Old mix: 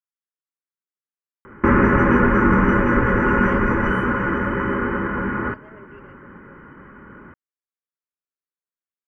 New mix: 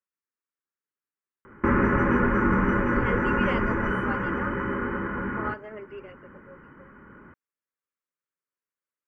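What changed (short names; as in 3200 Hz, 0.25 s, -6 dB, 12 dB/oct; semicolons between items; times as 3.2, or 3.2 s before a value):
speech +6.5 dB; background -6.5 dB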